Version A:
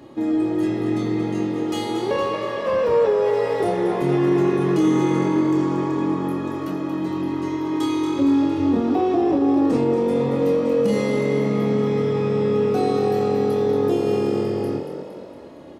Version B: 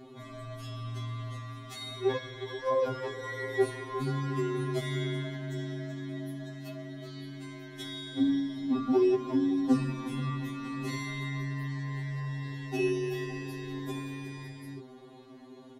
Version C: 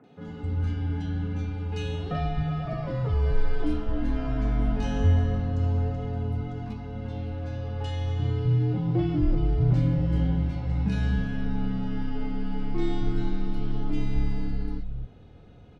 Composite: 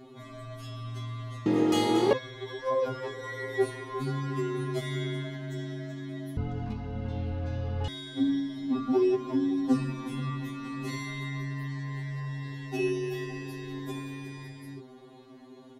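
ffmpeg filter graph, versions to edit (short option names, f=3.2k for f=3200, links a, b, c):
-filter_complex "[1:a]asplit=3[a][b][c];[a]atrim=end=1.462[d];[0:a]atrim=start=1.458:end=2.132[e];[b]atrim=start=2.128:end=6.372[f];[2:a]atrim=start=6.368:end=7.882[g];[c]atrim=start=7.878[h];[d][e]acrossfade=d=0.004:c1=hsin:c2=hsin[i];[i][f]acrossfade=d=0.004:c1=hsin:c2=hsin[j];[j][g]acrossfade=d=0.004:c1=hsin:c2=hsin[k];[k][h]acrossfade=d=0.004:c1=hsin:c2=hsin"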